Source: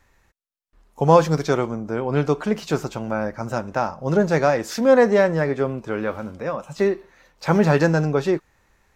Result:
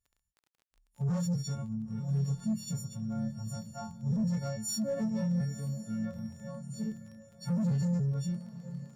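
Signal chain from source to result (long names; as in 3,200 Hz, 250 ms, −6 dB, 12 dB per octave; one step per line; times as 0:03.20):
every partial snapped to a pitch grid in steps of 4 semitones
drawn EQ curve 210 Hz 0 dB, 330 Hz −28 dB, 510 Hz −16 dB, 760 Hz −15 dB, 2,200 Hz −20 dB, 7,200 Hz −5 dB
hard clipping −26.5 dBFS, distortion −7 dB
feedback delay with all-pass diffusion 954 ms, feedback 56%, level −9 dB
surface crackle 23 per second −26 dBFS
every bin expanded away from the loudest bin 1.5 to 1
level −6.5 dB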